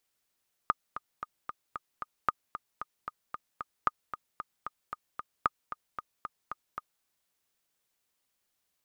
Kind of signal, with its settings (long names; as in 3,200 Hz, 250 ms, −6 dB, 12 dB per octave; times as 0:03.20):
click track 227 BPM, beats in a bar 6, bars 4, 1,230 Hz, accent 12 dB −11 dBFS